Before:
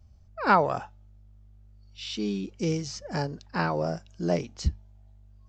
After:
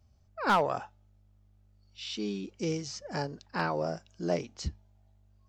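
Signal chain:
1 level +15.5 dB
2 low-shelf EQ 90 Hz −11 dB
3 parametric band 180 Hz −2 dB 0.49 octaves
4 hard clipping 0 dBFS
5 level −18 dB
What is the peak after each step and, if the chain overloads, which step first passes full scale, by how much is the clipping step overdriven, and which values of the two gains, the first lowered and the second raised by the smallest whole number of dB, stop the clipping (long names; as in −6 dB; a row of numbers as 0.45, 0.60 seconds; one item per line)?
+8.5, +9.0, +9.0, 0.0, −18.0 dBFS
step 1, 9.0 dB
step 1 +6.5 dB, step 5 −9 dB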